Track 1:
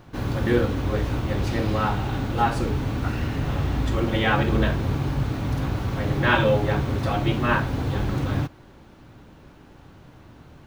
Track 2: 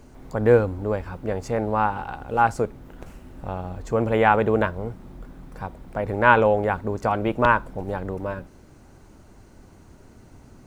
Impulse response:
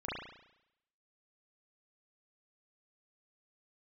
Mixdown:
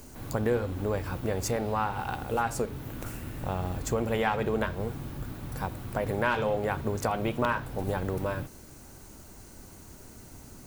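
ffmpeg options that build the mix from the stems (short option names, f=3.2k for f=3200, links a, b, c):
-filter_complex "[0:a]aeval=exprs='clip(val(0),-1,0.112)':c=same,volume=-14dB[a];[1:a]aemphasis=mode=production:type=75fm,acompressor=threshold=-26dB:ratio=4,volume=0dB,asplit=2[b][c];[c]apad=whole_len=470287[d];[a][d]sidechaingate=range=-33dB:threshold=-44dB:ratio=16:detection=peak[e];[e][b]amix=inputs=2:normalize=0"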